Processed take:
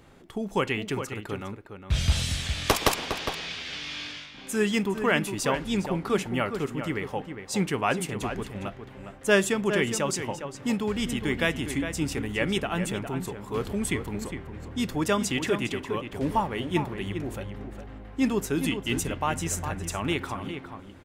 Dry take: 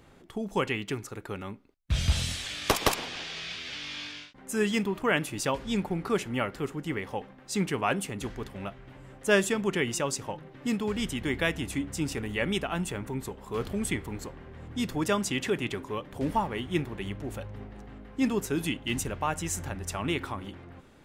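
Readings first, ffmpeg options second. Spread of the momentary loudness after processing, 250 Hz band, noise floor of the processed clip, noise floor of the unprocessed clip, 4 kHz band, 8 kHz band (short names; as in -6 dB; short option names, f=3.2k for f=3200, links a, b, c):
11 LU, +2.5 dB, -46 dBFS, -53 dBFS, +2.5 dB, +2.0 dB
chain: -filter_complex "[0:a]asplit=2[a][b];[b]adelay=408.2,volume=-8dB,highshelf=f=4k:g=-9.18[c];[a][c]amix=inputs=2:normalize=0,volume=2dB"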